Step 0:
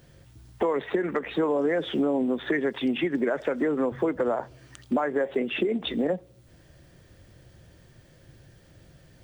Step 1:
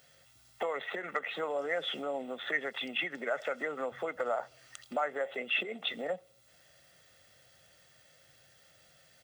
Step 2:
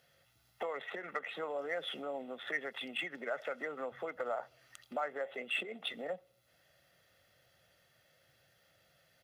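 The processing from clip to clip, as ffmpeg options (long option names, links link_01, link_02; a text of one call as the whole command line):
ffmpeg -i in.wav -af "highpass=frequency=1500:poles=1,aecho=1:1:1.5:0.56" out.wav
ffmpeg -i in.wav -af "aexciter=amount=13.5:drive=1.5:freq=11000,adynamicsmooth=sensitivity=7.5:basefreq=6100,volume=-4.5dB" out.wav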